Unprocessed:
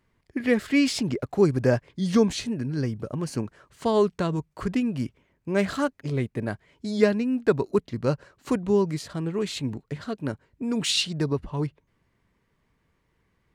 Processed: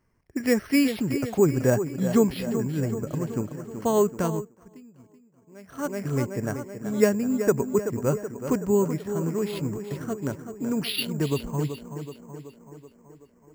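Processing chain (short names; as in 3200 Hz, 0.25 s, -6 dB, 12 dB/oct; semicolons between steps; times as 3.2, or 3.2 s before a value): Wiener smoothing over 9 samples; 7.09–8.04 air absorption 230 m; tape echo 0.378 s, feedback 66%, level -8 dB, low-pass 2500 Hz; careless resampling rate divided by 6×, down filtered, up hold; 4.26–5.98 dip -23.5 dB, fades 0.31 s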